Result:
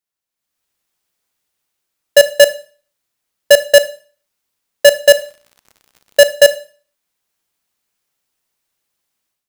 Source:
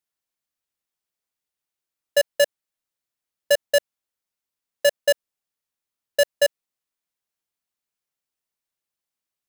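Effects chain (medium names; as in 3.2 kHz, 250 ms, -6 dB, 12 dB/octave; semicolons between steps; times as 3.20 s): level rider gain up to 13 dB; 5.02–6.28 s: crackle 97 per s -33 dBFS; Schroeder reverb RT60 0.42 s, combs from 29 ms, DRR 14.5 dB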